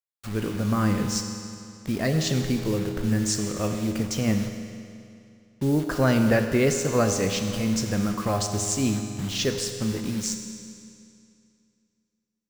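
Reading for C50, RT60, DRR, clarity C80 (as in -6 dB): 6.0 dB, 2.5 s, 5.0 dB, 7.0 dB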